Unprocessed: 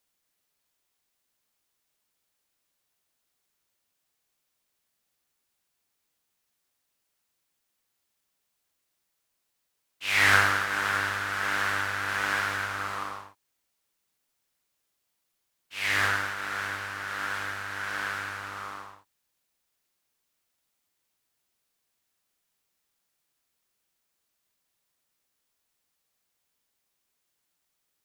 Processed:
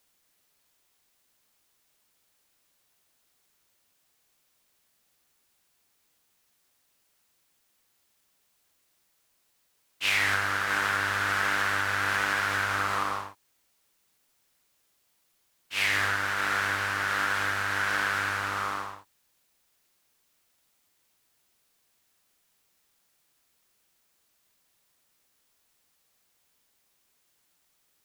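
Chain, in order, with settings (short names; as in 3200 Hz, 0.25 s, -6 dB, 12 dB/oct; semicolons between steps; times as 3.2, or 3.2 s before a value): compressor 10:1, threshold -30 dBFS, peak gain reduction 15.5 dB; gain +7.5 dB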